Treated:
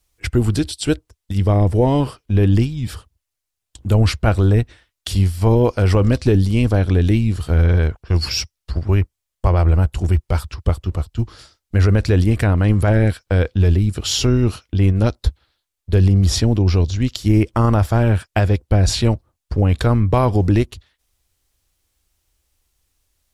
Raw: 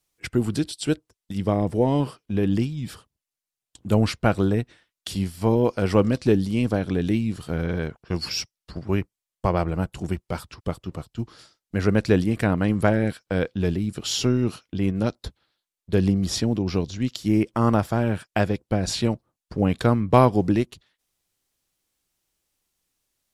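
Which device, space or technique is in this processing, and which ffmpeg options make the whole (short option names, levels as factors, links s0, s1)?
car stereo with a boomy subwoofer: -af "lowshelf=f=110:t=q:w=1.5:g=11.5,alimiter=limit=0.266:level=0:latency=1:release=26,volume=2"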